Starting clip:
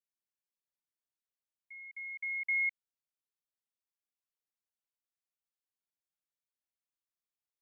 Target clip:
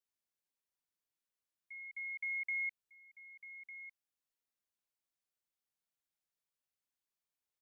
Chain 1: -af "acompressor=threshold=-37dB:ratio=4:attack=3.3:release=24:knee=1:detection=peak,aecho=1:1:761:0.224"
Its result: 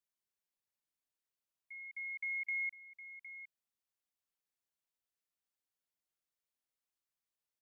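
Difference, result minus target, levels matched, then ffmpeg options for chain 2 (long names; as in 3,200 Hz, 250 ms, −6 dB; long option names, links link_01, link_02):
echo 441 ms early
-af "acompressor=threshold=-37dB:ratio=4:attack=3.3:release=24:knee=1:detection=peak,aecho=1:1:1202:0.224"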